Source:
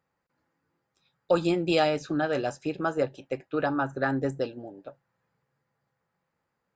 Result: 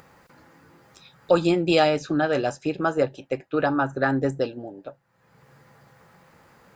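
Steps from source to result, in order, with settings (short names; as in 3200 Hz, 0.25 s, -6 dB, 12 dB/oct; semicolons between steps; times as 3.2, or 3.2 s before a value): upward compressor, threshold -41 dBFS; gain +4.5 dB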